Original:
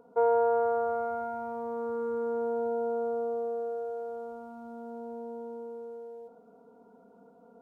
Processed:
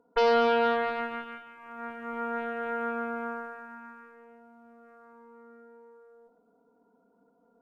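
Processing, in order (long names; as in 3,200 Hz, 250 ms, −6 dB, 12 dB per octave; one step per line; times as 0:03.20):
harmonic generator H 4 −16 dB, 5 −33 dB, 7 −14 dB, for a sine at −17 dBFS
hollow resonant body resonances 300/1,000/1,400 Hz, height 7 dB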